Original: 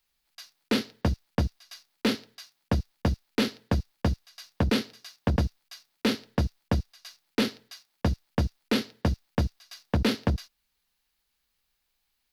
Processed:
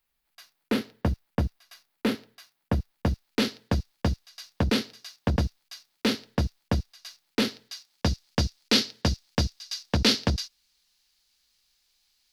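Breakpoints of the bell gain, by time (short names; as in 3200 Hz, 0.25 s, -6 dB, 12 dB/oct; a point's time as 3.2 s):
bell 5200 Hz 1.7 oct
2.78 s -6.5 dB
3.45 s +3 dB
7.44 s +3 dB
8.24 s +13.5 dB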